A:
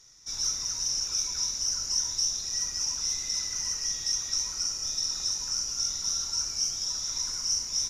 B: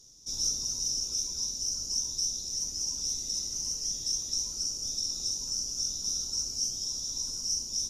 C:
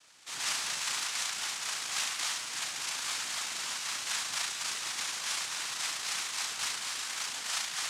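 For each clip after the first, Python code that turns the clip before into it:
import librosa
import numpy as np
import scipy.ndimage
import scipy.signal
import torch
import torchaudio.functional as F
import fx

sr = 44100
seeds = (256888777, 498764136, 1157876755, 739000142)

y1 = fx.curve_eq(x, sr, hz=(140.0, 240.0, 520.0, 2000.0, 3100.0, 9300.0), db=(0, 4, -1, -23, -7, 1))
y1 = fx.rider(y1, sr, range_db=5, speed_s=2.0)
y2 = fx.room_flutter(y1, sr, wall_m=6.1, rt60_s=0.8)
y2 = fx.noise_vocoder(y2, sr, seeds[0], bands=2)
y2 = F.gain(torch.from_numpy(y2), -5.5).numpy()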